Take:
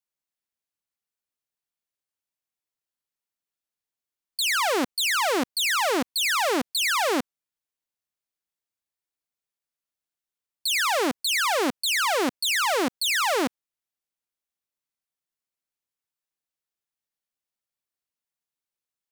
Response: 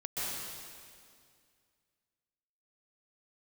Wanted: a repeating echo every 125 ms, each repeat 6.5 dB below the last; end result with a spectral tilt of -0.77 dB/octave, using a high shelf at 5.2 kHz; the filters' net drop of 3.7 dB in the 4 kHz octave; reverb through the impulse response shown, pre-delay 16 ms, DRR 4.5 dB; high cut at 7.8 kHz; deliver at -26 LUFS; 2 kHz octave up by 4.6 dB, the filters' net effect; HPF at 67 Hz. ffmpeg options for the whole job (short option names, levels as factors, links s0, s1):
-filter_complex "[0:a]highpass=67,lowpass=7800,equalizer=f=2000:t=o:g=7.5,equalizer=f=4000:t=o:g=-9,highshelf=f=5200:g=3,aecho=1:1:125|250|375|500|625|750:0.473|0.222|0.105|0.0491|0.0231|0.0109,asplit=2[s0][s1];[1:a]atrim=start_sample=2205,adelay=16[s2];[s1][s2]afir=irnorm=-1:irlink=0,volume=0.335[s3];[s0][s3]amix=inputs=2:normalize=0,volume=0.501"